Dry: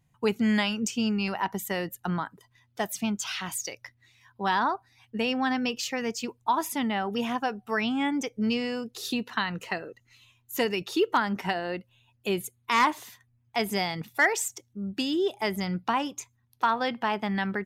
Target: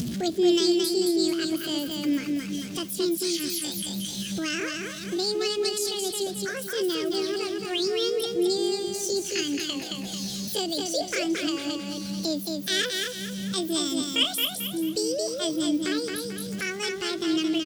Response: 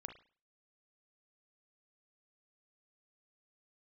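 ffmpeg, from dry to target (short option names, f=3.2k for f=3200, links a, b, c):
-filter_complex "[0:a]aeval=exprs='val(0)+0.5*0.0133*sgn(val(0))':c=same,highpass=47,highshelf=f=8.7k:g=-9,asetrate=72056,aresample=44100,atempo=0.612027,asplit=2[a][b];[b]aecho=0:1:221|442|663|884|1105:0.631|0.227|0.0818|0.0294|0.0106[c];[a][c]amix=inputs=2:normalize=0,acompressor=mode=upward:threshold=-27dB:ratio=2.5,firequalizer=gain_entry='entry(170,0);entry(910,-23);entry(3200,-6);entry(6100,-3);entry(12000,-6)':delay=0.05:min_phase=1,volume=7.5dB"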